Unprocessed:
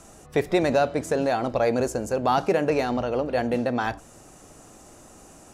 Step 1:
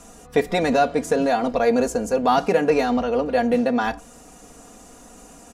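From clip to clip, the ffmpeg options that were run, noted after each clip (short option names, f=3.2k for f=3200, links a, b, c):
-af "aecho=1:1:4.2:0.73,volume=1.5dB"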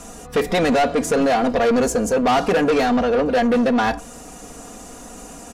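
-af "asoftclip=type=tanh:threshold=-21dB,volume=7.5dB"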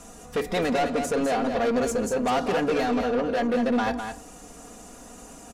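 -af "aecho=1:1:205:0.447,volume=-7.5dB"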